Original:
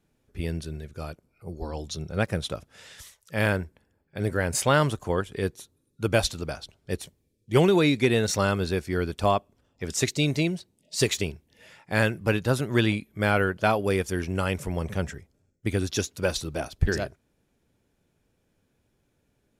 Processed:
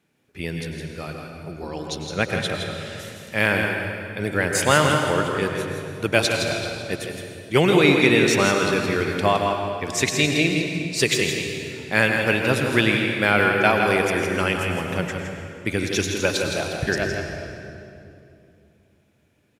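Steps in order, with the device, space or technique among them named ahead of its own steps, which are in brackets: PA in a hall (HPF 130 Hz 12 dB/oct; bell 2300 Hz +7 dB 1.2 oct; echo 0.164 s -7 dB; reverb RT60 2.7 s, pre-delay 92 ms, DRR 3.5 dB); gain +2 dB

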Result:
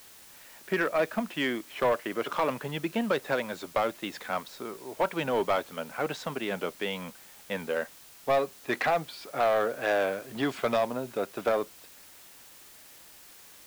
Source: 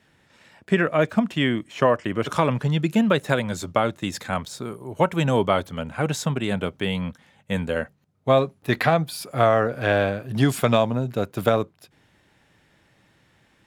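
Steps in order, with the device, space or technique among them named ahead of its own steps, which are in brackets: tape answering machine (BPF 340–3400 Hz; soft clip -16 dBFS, distortion -13 dB; wow and flutter; white noise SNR 21 dB); gain -2.5 dB

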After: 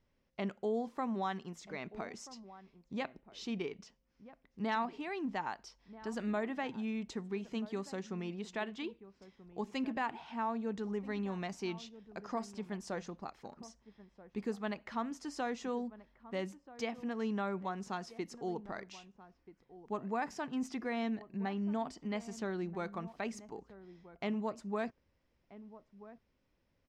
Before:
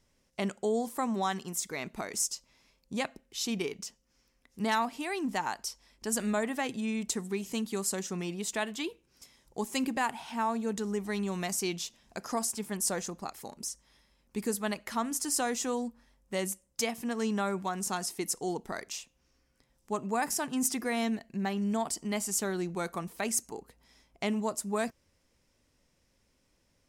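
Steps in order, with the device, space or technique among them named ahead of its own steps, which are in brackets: shout across a valley (air absorption 210 m; outdoor echo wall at 220 m, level -16 dB); gain -4.5 dB

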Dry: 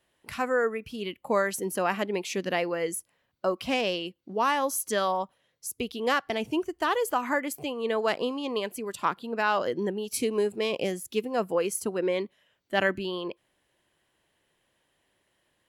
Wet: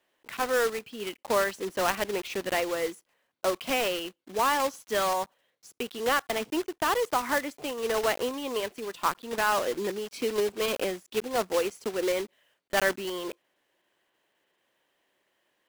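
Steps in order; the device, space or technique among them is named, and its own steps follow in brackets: early digital voice recorder (BPF 280–3800 Hz; block floating point 3-bit)

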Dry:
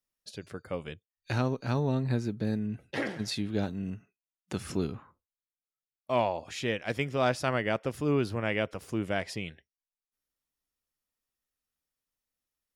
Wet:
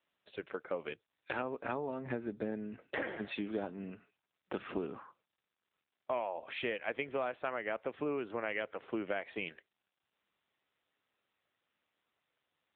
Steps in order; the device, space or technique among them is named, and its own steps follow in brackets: 8.52–9.13 dynamic EQ 1800 Hz, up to +4 dB, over -48 dBFS, Q 3.6; voicemail (BPF 380–2900 Hz; compressor 10:1, threshold -36 dBFS, peak gain reduction 14 dB; gain +4.5 dB; AMR-NB 7.95 kbps 8000 Hz)

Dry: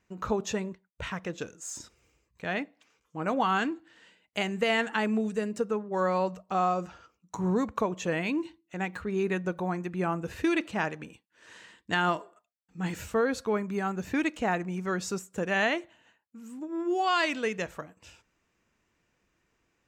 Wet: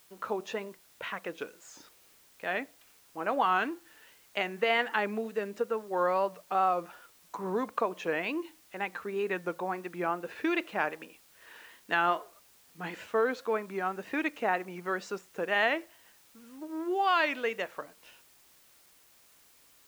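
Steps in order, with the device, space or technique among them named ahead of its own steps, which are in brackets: dictaphone (BPF 380–3300 Hz; AGC gain up to 3 dB; wow and flutter 77 cents; white noise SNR 28 dB); gain -2.5 dB

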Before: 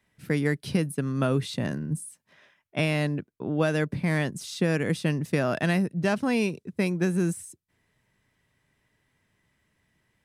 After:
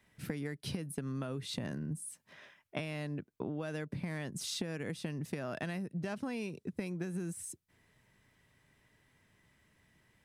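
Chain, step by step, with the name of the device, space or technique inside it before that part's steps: serial compression, leveller first (compressor 2.5:1, threshold -26 dBFS, peak gain reduction 5.5 dB; compressor 10:1, threshold -37 dBFS, peak gain reduction 14.5 dB); gain +2 dB

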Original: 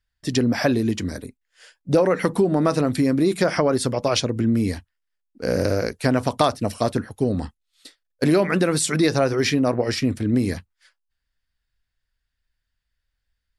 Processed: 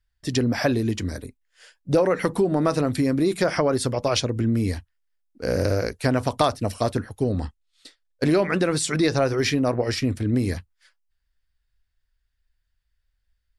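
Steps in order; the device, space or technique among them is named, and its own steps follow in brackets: 7.23–9.25 LPF 9000 Hz 12 dB/oct; low shelf boost with a cut just above (low shelf 110 Hz +7.5 dB; bell 190 Hz -4 dB 1.1 oct); gain -1.5 dB

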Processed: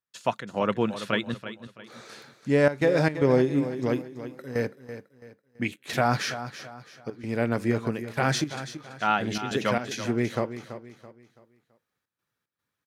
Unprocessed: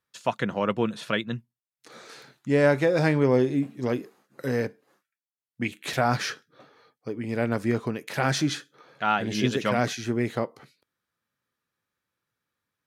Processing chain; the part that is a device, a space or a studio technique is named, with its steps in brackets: trance gate with a delay (step gate ".xx.xxxxxx" 112 bpm -12 dB; feedback echo 0.332 s, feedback 36%, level -12 dB)

